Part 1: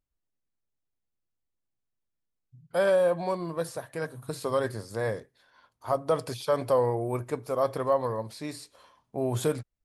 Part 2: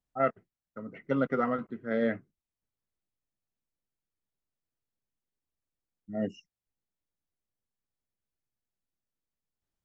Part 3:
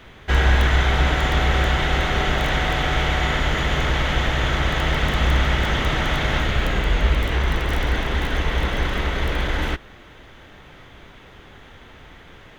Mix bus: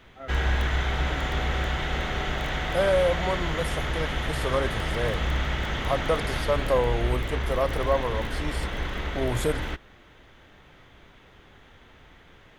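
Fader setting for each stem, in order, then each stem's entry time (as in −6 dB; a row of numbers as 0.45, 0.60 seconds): +0.5, −15.0, −8.0 decibels; 0.00, 0.00, 0.00 seconds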